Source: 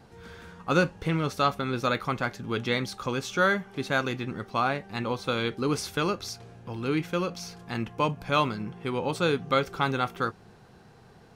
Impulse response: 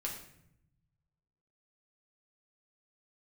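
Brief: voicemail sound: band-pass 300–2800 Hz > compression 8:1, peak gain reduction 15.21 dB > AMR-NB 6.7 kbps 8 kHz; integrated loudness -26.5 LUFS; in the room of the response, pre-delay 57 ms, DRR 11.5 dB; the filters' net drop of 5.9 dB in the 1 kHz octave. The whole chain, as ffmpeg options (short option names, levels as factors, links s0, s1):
-filter_complex "[0:a]equalizer=f=1000:t=o:g=-8,asplit=2[s0][s1];[1:a]atrim=start_sample=2205,adelay=57[s2];[s1][s2]afir=irnorm=-1:irlink=0,volume=0.237[s3];[s0][s3]amix=inputs=2:normalize=0,highpass=300,lowpass=2800,acompressor=threshold=0.0158:ratio=8,volume=6.31" -ar 8000 -c:a libopencore_amrnb -b:a 6700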